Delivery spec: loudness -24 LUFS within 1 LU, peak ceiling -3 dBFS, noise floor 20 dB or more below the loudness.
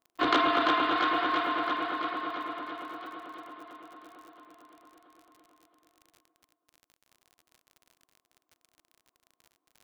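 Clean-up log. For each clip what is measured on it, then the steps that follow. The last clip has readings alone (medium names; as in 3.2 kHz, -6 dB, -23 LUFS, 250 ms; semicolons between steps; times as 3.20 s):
tick rate 51 per s; loudness -28.5 LUFS; peak level -10.5 dBFS; loudness target -24.0 LUFS
-> de-click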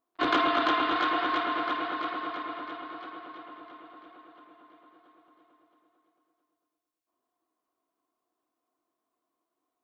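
tick rate 0.41 per s; loudness -28.5 LUFS; peak level -12.5 dBFS; loudness target -24.0 LUFS
-> trim +4.5 dB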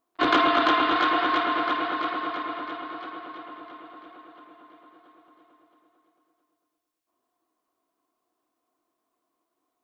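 loudness -24.0 LUFS; peak level -8.0 dBFS; noise floor -81 dBFS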